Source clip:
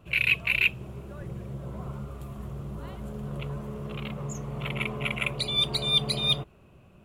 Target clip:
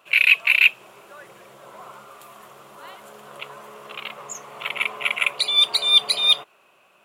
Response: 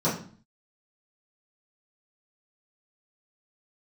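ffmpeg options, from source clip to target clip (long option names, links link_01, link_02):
-af "highpass=870,volume=8.5dB"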